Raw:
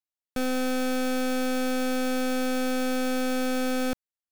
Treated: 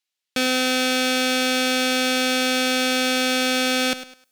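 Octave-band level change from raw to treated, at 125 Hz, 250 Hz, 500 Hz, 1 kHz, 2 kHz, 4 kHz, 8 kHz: can't be measured, +2.5 dB, +4.0 dB, +6.5 dB, +11.5 dB, +16.0 dB, +11.5 dB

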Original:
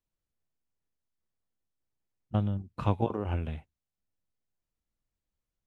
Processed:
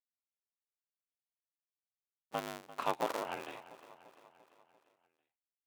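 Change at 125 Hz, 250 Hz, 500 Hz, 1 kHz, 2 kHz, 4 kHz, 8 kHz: −26.5 dB, −14.0 dB, −3.5 dB, 0.0 dB, +4.5 dB, +4.0 dB, can't be measured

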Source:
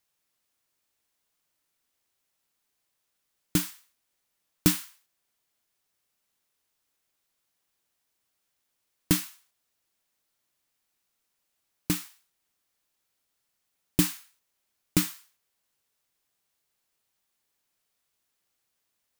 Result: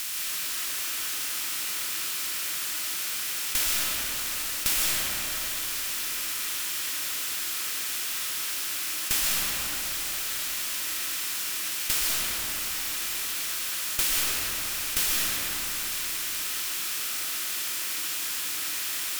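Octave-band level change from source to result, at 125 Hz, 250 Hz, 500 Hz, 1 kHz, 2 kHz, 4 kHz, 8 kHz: −11.0, −13.0, +1.0, +11.5, +14.0, +13.5, +12.5 decibels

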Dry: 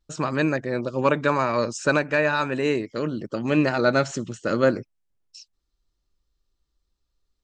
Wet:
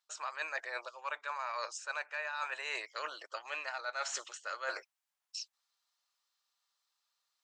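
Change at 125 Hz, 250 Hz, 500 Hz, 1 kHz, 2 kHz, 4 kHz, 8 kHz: below −40 dB, below −40 dB, −23.5 dB, −12.5 dB, −11.0 dB, −8.0 dB, −5.5 dB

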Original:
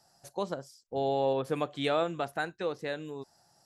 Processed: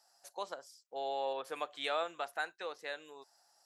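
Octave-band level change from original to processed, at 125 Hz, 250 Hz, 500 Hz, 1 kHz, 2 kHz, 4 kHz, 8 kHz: below −25 dB, −18.5 dB, −9.0 dB, −4.5 dB, −2.5 dB, −2.5 dB, can't be measured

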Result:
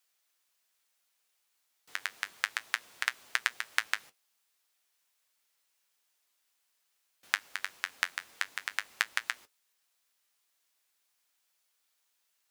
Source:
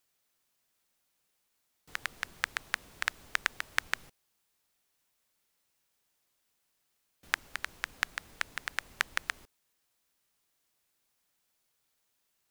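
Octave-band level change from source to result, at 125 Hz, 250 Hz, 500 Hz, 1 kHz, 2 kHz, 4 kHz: below −15 dB, can't be measured, −4.5 dB, −0.5 dB, +1.0 dB, +1.5 dB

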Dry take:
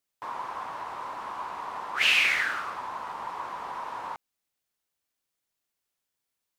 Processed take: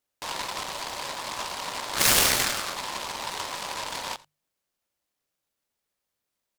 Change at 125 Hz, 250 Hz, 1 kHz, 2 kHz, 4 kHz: can't be measured, +10.5 dB, +0.5 dB, −3.5 dB, +4.0 dB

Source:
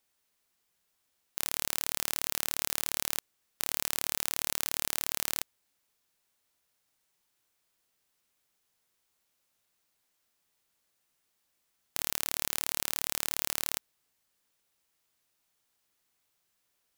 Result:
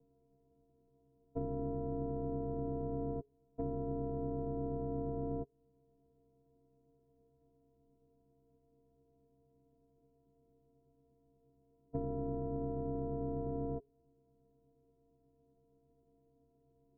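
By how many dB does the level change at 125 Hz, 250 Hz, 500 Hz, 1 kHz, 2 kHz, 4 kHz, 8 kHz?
+12.5 dB, +12.0 dB, +10.0 dB, −3.5 dB, below −35 dB, below −40 dB, below −40 dB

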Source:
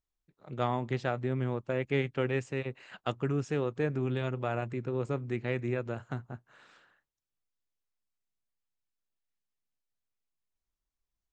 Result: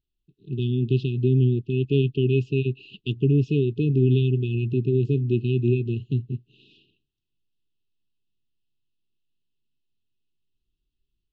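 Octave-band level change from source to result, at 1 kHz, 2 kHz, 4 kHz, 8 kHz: below −40 dB, −1.5 dB, +7.5 dB, can't be measured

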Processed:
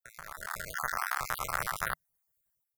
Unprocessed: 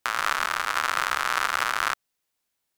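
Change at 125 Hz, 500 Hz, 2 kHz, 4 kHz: can't be measured, −6.5 dB, −10.0 dB, −15.0 dB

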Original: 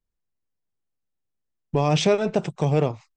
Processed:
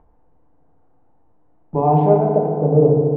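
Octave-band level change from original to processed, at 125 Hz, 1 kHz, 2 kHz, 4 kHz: +6.5 dB, +9.5 dB, below −15 dB, below −25 dB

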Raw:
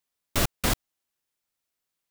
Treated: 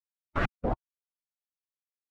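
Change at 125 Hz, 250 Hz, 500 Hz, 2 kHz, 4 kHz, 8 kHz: −4.0 dB, −3.0 dB, −0.5 dB, −3.5 dB, −18.5 dB, below −30 dB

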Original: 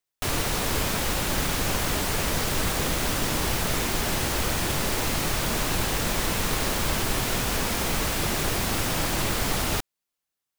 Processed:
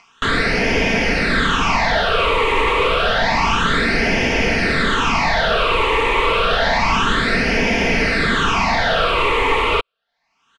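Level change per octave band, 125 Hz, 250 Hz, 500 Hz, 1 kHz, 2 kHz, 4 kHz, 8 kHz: +3.5, +8.0, +11.5, +13.0, +13.5, +7.5, −7.0 decibels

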